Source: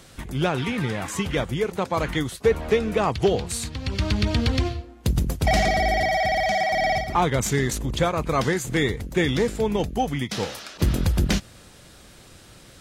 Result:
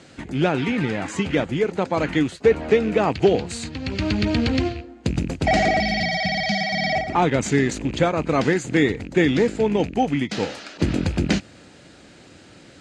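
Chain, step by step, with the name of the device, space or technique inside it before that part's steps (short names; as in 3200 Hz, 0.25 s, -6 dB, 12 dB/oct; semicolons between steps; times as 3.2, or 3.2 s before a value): car door speaker with a rattle (rattling part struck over -27 dBFS, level -30 dBFS; speaker cabinet 100–6900 Hz, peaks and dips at 120 Hz -4 dB, 290 Hz +6 dB, 1100 Hz -6 dB, 3500 Hz -5 dB, 5600 Hz -7 dB); 5.8–6.93 EQ curve 100 Hz 0 dB, 200 Hz +10 dB, 300 Hz -12 dB, 1800 Hz -3 dB, 4800 Hz +10 dB, 7900 Hz -5 dB, 14000 Hz +9 dB; gain +3 dB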